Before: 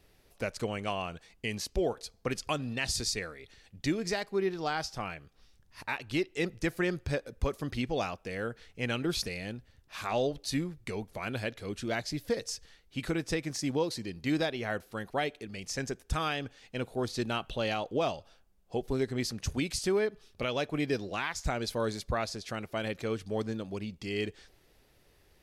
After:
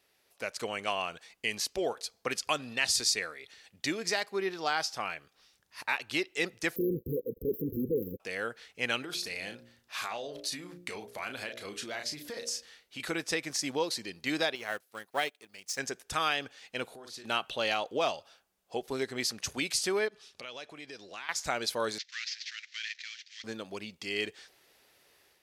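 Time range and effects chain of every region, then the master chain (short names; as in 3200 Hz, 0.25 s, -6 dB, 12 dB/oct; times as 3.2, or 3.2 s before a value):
6.76–8.2 sample leveller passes 5 + AM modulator 110 Hz, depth 25% + brick-wall FIR band-stop 520–12000 Hz
9.04–13 doubler 34 ms -8 dB + de-hum 58.83 Hz, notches 11 + compressor 10:1, threshold -34 dBFS
14.55–15.79 G.711 law mismatch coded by A + high shelf 8100 Hz +8 dB + upward expander, over -50 dBFS
16.85–17.25 doubler 44 ms -7 dB + compressor 12:1, threshold -43 dBFS
20.08–21.29 LPF 7800 Hz + high shelf 3600 Hz +7 dB + compressor 3:1, threshold -46 dBFS
21.98–23.44 CVSD 32 kbps + elliptic high-pass 1800 Hz, stop band 60 dB
whole clip: AGC gain up to 7 dB; HPF 860 Hz 6 dB/oct; gain -2 dB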